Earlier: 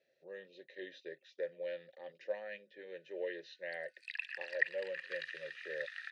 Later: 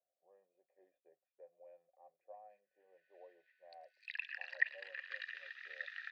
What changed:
speech: add formant resonators in series a
background: add high-frequency loss of the air 130 metres

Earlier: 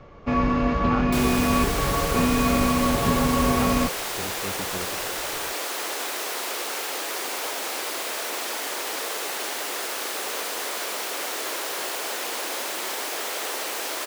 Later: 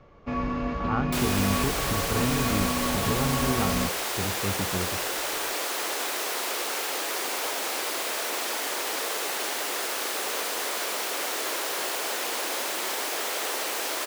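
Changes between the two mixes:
speech: add parametric band 100 Hz +9 dB 2.3 octaves
first sound −7.0 dB

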